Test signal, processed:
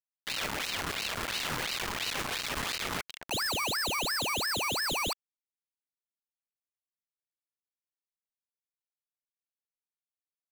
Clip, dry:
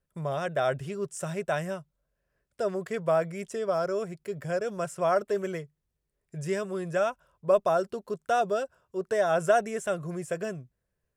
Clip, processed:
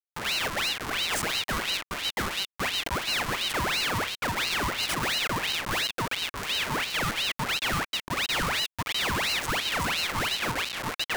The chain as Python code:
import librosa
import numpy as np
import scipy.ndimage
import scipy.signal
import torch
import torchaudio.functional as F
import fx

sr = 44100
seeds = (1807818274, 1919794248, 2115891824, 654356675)

y = fx.echo_filtered(x, sr, ms=681, feedback_pct=16, hz=3300.0, wet_db=-6.5)
y = fx.dynamic_eq(y, sr, hz=5100.0, q=1.3, threshold_db=-50.0, ratio=4.0, max_db=4)
y = fx.schmitt(y, sr, flips_db=-39.0)
y = scipy.signal.sosfilt(scipy.signal.butter(4, 300.0, 'highpass', fs=sr, output='sos'), y)
y = fx.ring_lfo(y, sr, carrier_hz=2000.0, swing_pct=75, hz=2.9)
y = y * 10.0 ** (5.0 / 20.0)